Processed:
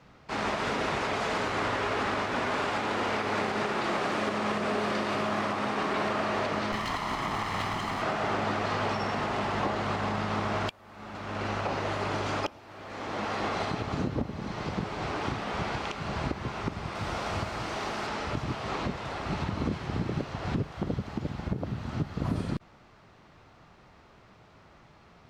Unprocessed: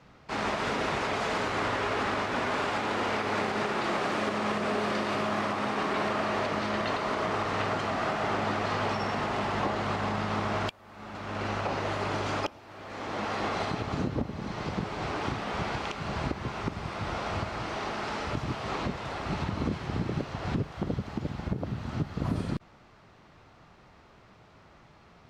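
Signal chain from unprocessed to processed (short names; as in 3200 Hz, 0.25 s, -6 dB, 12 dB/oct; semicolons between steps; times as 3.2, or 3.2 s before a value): 6.72–8.02 minimum comb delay 0.97 ms; 16.95–18.07 high shelf 8000 Hz +10.5 dB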